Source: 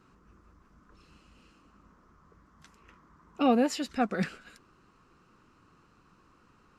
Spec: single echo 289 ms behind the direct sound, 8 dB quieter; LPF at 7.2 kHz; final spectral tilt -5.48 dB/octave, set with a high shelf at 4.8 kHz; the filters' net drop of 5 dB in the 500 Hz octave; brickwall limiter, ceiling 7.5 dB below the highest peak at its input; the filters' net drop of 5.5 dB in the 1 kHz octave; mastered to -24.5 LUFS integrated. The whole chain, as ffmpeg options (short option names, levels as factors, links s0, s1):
-af "lowpass=7200,equalizer=f=500:t=o:g=-4,equalizer=f=1000:t=o:g=-6,highshelf=f=4800:g=-8,alimiter=level_in=1.12:limit=0.0631:level=0:latency=1,volume=0.891,aecho=1:1:289:0.398,volume=3.76"